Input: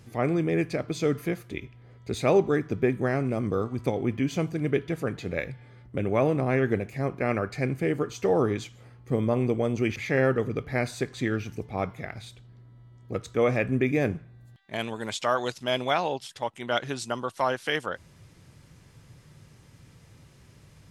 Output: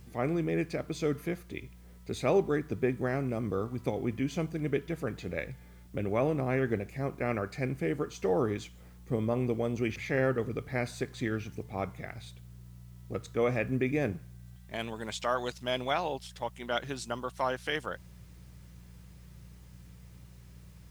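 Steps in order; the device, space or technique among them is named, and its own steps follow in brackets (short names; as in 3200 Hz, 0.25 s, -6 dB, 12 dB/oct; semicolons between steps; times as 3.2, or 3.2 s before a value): video cassette with head-switching buzz (buzz 60 Hz, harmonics 3, -47 dBFS; white noise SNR 35 dB); gain -5 dB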